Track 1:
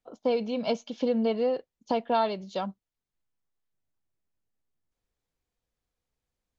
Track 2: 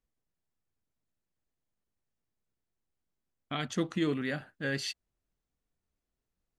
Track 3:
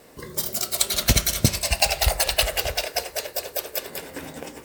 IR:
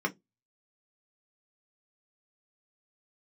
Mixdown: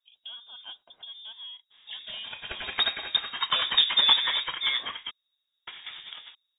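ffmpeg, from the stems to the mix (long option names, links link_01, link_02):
-filter_complex "[0:a]acompressor=threshold=-30dB:ratio=2,highpass=frequency=610:poles=1,volume=-8dB[link_01];[1:a]volume=3dB,asplit=2[link_02][link_03];[link_03]volume=-6dB[link_04];[2:a]adynamicequalizer=threshold=0.00891:dfrequency=1400:dqfactor=0.98:tfrequency=1400:tqfactor=0.98:attack=5:release=100:ratio=0.375:range=3:mode=boostabove:tftype=bell,adelay=1700,volume=-6.5dB,asplit=3[link_05][link_06][link_07];[link_05]atrim=end=5.11,asetpts=PTS-STARTPTS,afade=type=out:start_time=5.106:duration=0.004:curve=hsin[link_08];[link_06]atrim=start=5.11:end=5.67,asetpts=PTS-STARTPTS,volume=0[link_09];[link_07]atrim=start=5.67,asetpts=PTS-STARTPTS,afade=type=in:duration=0.004:curve=hsin[link_10];[link_08][link_09][link_10]concat=n=3:v=0:a=1[link_11];[3:a]atrim=start_sample=2205[link_12];[link_04][link_12]afir=irnorm=-1:irlink=0[link_13];[link_01][link_02][link_11][link_13]amix=inputs=4:normalize=0,lowpass=frequency=3200:width_type=q:width=0.5098,lowpass=frequency=3200:width_type=q:width=0.6013,lowpass=frequency=3200:width_type=q:width=0.9,lowpass=frequency=3200:width_type=q:width=2.563,afreqshift=-3800"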